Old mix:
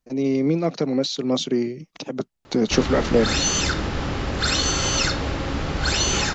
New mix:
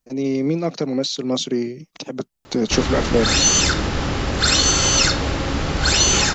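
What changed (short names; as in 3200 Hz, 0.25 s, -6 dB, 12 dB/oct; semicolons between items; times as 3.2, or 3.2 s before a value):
background +3.5 dB; master: add high shelf 6800 Hz +9 dB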